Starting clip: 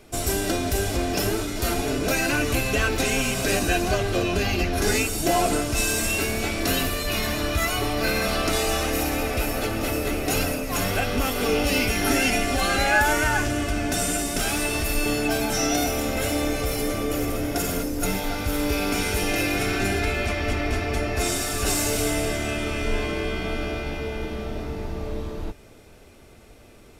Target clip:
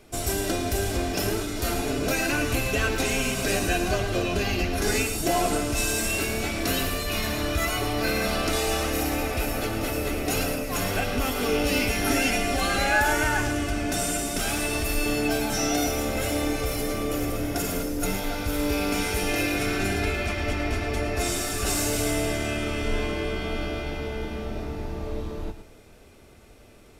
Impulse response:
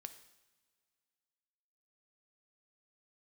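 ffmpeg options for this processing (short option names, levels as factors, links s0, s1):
-filter_complex "[0:a]asplit=2[s0][s1];[1:a]atrim=start_sample=2205,adelay=109[s2];[s1][s2]afir=irnorm=-1:irlink=0,volume=0.562[s3];[s0][s3]amix=inputs=2:normalize=0,volume=0.75"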